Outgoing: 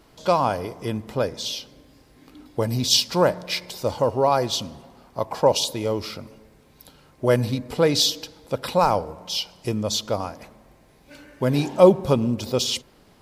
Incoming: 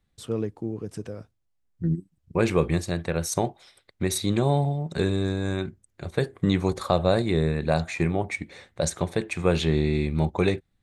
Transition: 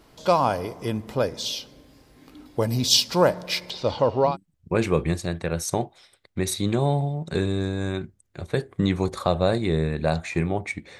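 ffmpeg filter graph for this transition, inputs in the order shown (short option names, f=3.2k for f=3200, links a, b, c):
-filter_complex "[0:a]asettb=1/sr,asplit=3[a][b][c];[a]atrim=end=3.704[d];[b]atrim=start=3.7:end=4.37,asetpts=PTS-STARTPTS,afade=t=in:d=0.004:c=qsin,afade=t=out:st=0.666:d=0.004:c=qsin,lowpass=f=3.8k:t=q:w=2.1[e];[c]atrim=start=4.366[f];[d][e]acrossfade=d=0.004:c1=hsin:c2=qsin[g];[g][f]acrossfade=d=0.004:c1=qsin:c2=hsin,apad=whole_dur=10.99,atrim=end=10.99,atrim=end=4.37,asetpts=PTS-STARTPTS[h];[1:a]atrim=start=1.87:end=8.63,asetpts=PTS-STARTPTS[i];[h][i]acrossfade=d=0.14:c1=tri:c2=tri"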